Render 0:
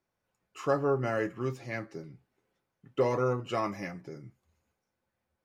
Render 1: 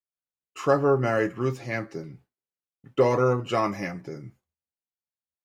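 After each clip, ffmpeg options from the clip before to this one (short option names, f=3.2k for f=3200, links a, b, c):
-af "agate=range=-33dB:threshold=-54dB:ratio=3:detection=peak,volume=6.5dB"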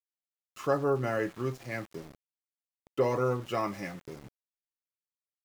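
-af "aeval=exprs='val(0)*gte(abs(val(0)),0.0112)':c=same,volume=-6.5dB"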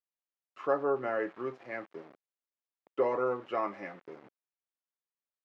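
-af "highpass=350,lowpass=2k"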